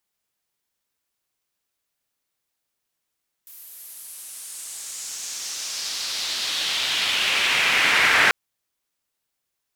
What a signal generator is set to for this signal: swept filtered noise pink, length 4.84 s bandpass, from 14000 Hz, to 1800 Hz, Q 2.1, exponential, gain ramp +24.5 dB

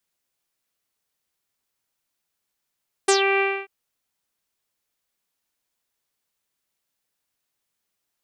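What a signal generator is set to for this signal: synth note saw G4 24 dB/oct, low-pass 2500 Hz, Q 6.4, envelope 2 oct, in 0.15 s, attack 8.2 ms, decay 0.09 s, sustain -6.5 dB, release 0.27 s, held 0.32 s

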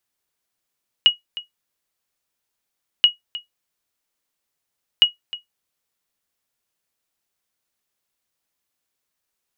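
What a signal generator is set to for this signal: sonar ping 2900 Hz, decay 0.14 s, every 1.98 s, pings 3, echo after 0.31 s, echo -17.5 dB -3.5 dBFS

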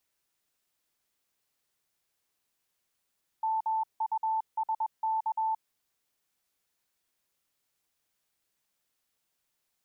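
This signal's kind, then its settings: Morse "MUSK" 21 wpm 883 Hz -26 dBFS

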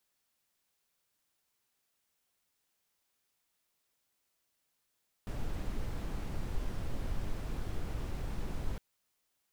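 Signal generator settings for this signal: noise brown, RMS -34.5 dBFS 3.51 s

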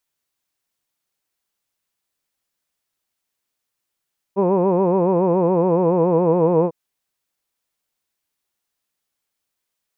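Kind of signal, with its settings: formant vowel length 2.35 s, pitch 188 Hz, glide -2 st, vibrato 7.1 Hz, vibrato depth 1.15 st, F1 460 Hz, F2 970 Hz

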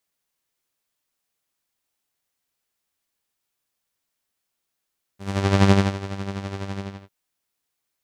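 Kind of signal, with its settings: synth patch with tremolo G3, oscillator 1 saw, sub -3.5 dB, filter lowpass, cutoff 4000 Hz, Q 0.78, filter envelope 1.5 oct, attack 0.491 s, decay 0.28 s, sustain -16 dB, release 0.32 s, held 1.58 s, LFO 12 Hz, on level 7.5 dB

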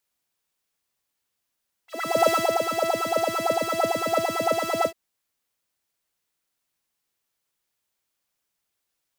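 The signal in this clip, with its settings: synth patch with filter wobble E5, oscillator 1 saw, interval 0 st, oscillator 2 level -4.5 dB, noise -15 dB, filter highpass, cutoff 220 Hz, Q 5.6, filter envelope 2.5 oct, filter decay 0.24 s, filter sustain 25%, attack 0.409 s, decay 0.25 s, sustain -5.5 dB, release 0.08 s, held 2.97 s, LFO 8.9 Hz, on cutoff 1.8 oct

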